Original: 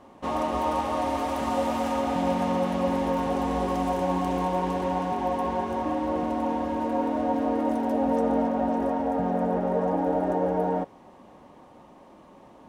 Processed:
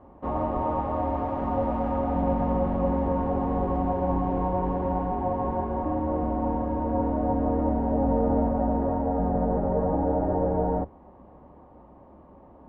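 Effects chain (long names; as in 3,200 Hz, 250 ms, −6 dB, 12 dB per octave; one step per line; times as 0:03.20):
sub-octave generator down 2 octaves, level −1 dB
low-pass filter 1,100 Hz 12 dB per octave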